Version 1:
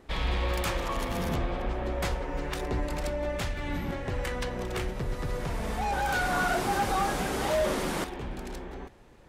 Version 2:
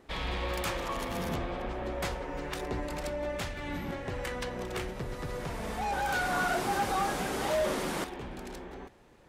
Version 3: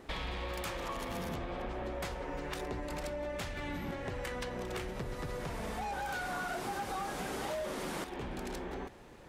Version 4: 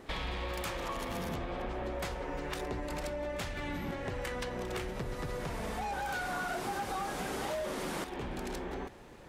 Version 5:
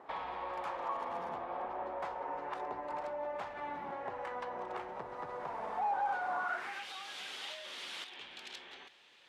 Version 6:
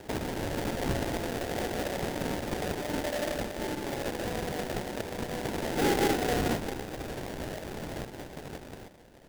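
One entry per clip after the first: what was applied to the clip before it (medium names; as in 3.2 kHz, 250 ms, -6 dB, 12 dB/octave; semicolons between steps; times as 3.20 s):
bass shelf 86 Hz -8 dB; trim -2 dB
compression 6:1, threshold -41 dBFS, peak gain reduction 14.5 dB; trim +5 dB
pre-echo 30 ms -22.5 dB; trim +1.5 dB
band-pass sweep 890 Hz -> 3.3 kHz, 6.38–6.89 s; trim +5.5 dB
sample-rate reducer 1.2 kHz, jitter 20%; trim +7.5 dB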